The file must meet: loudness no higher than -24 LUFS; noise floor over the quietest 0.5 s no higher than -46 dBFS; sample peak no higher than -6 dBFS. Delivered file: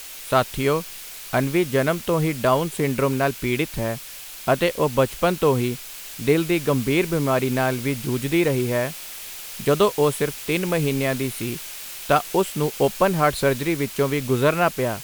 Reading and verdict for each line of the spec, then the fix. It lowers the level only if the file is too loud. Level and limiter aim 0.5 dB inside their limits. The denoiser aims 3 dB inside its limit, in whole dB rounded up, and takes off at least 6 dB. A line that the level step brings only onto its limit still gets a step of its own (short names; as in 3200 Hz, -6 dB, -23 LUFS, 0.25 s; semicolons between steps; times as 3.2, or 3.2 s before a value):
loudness -22.0 LUFS: fail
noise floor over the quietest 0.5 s -38 dBFS: fail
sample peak -5.0 dBFS: fail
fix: denoiser 9 dB, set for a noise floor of -38 dBFS; gain -2.5 dB